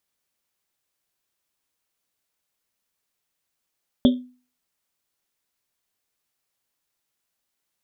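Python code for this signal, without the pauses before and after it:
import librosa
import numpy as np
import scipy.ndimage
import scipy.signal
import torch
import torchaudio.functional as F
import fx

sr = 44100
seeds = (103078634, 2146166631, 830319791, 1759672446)

y = fx.risset_drum(sr, seeds[0], length_s=1.1, hz=250.0, decay_s=0.38, noise_hz=3400.0, noise_width_hz=440.0, noise_pct=10)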